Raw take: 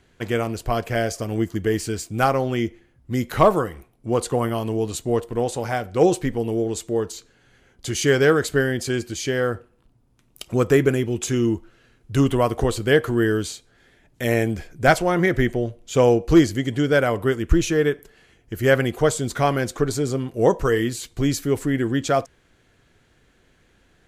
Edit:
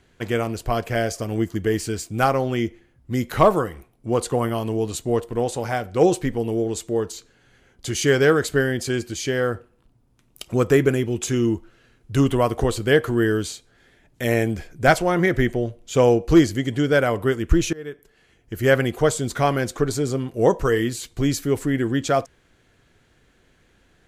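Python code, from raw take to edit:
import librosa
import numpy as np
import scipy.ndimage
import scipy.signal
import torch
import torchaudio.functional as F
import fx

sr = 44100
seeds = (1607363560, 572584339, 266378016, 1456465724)

y = fx.edit(x, sr, fx.fade_in_from(start_s=17.73, length_s=0.87, floor_db=-23.0), tone=tone)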